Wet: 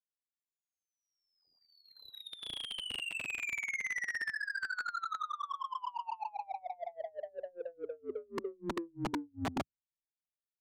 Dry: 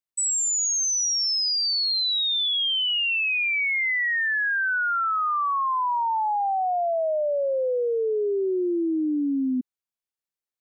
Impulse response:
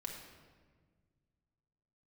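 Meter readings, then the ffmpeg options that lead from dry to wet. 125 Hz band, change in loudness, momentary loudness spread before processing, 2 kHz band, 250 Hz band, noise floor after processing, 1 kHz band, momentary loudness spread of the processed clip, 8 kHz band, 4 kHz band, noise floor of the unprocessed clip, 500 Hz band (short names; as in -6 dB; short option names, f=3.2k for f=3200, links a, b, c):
n/a, -16.5 dB, 4 LU, -14.0 dB, -16.0 dB, under -85 dBFS, -15.5 dB, 9 LU, -28.5 dB, -21.0 dB, under -85 dBFS, -18.0 dB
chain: -af "afftfilt=real='re*lt(hypot(re,im),0.224)':imag='im*lt(hypot(re,im),0.224)':win_size=1024:overlap=0.75,aemphasis=mode=production:type=50kf,afftdn=nr=24:nf=-53,lowpass=f=3.3k:w=0.5412,lowpass=f=3.3k:w=1.3066,asubboost=boost=6.5:cutoff=190,dynaudnorm=f=200:g=13:m=13dB,aeval=exprs='(mod(29.9*val(0)+1,2)-1)/29.9':c=same,adynamicsmooth=sensitivity=6.5:basefreq=650,volume=2dB"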